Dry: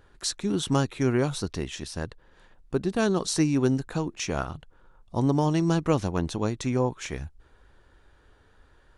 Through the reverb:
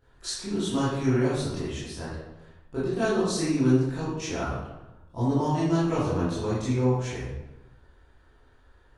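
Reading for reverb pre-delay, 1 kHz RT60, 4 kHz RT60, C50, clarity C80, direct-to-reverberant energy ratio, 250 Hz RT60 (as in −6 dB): 17 ms, 0.95 s, 0.65 s, −1.5 dB, 2.5 dB, −12.0 dB, 1.2 s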